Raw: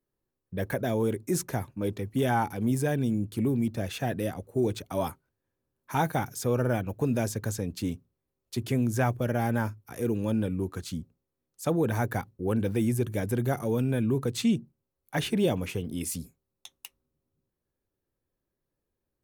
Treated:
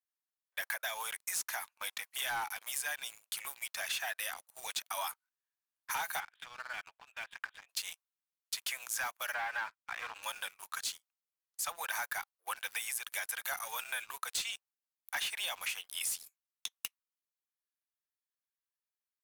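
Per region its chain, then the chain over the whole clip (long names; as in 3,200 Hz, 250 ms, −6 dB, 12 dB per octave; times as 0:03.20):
0:06.20–0:07.69: Butterworth low-pass 3,500 Hz 96 dB per octave + parametric band 470 Hz −6 dB 2.5 octaves + downward compressor 4 to 1, threshold −35 dBFS
0:09.34–0:10.23: Chebyshev band-pass filter 250–3,500 Hz + leveller curve on the samples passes 1 + high-frequency loss of the air 220 metres
whole clip: Bessel high-pass filter 1,500 Hz, order 8; leveller curve on the samples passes 3; downward compressor, threshold −34 dBFS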